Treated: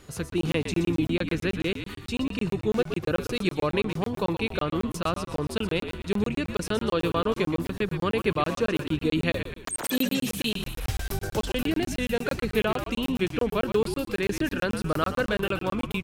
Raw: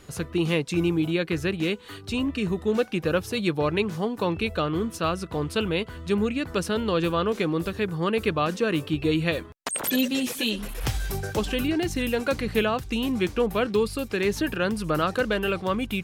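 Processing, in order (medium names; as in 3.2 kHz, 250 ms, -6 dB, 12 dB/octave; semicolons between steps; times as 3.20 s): on a send: frequency-shifting echo 123 ms, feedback 48%, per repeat -60 Hz, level -9 dB; on the sum: crackling interface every 0.11 s, samples 1024, zero, from 0.30 s; trim -1.5 dB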